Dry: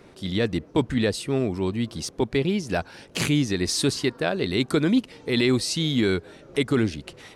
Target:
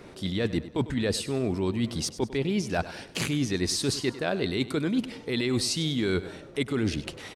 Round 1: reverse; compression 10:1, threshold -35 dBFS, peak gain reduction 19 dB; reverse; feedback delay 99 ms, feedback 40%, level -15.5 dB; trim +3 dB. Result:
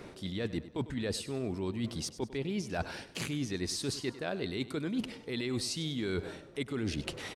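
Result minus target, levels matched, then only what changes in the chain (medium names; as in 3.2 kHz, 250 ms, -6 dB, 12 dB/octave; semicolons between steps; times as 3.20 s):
compression: peak gain reduction +7.5 dB
change: compression 10:1, threshold -26.5 dBFS, peak gain reduction 11 dB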